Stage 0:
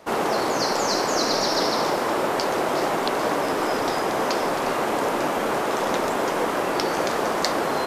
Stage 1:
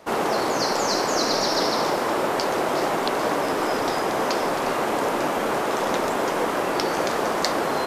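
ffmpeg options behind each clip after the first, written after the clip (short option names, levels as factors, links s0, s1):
-af anull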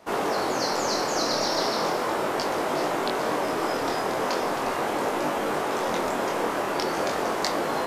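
-af "flanger=delay=19.5:depth=5.7:speed=0.38"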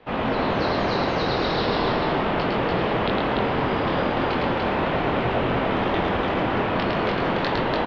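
-af "highpass=f=160:t=q:w=0.5412,highpass=f=160:t=q:w=1.307,lowpass=f=3500:t=q:w=0.5176,lowpass=f=3500:t=q:w=0.7071,lowpass=f=3500:t=q:w=1.932,afreqshift=-180,aemphasis=mode=production:type=75fm,aecho=1:1:107.9|291.5:0.708|0.708,volume=1.12"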